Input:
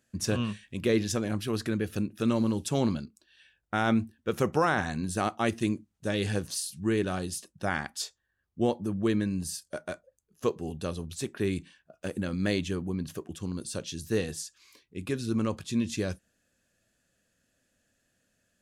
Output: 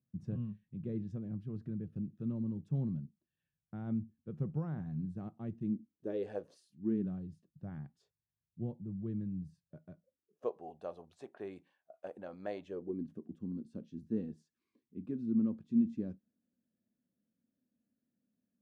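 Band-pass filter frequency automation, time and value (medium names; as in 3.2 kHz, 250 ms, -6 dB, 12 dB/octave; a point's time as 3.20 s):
band-pass filter, Q 3.5
5.59 s 150 Hz
6.36 s 630 Hz
7.21 s 140 Hz
9.93 s 140 Hz
10.51 s 710 Hz
12.62 s 710 Hz
13.11 s 230 Hz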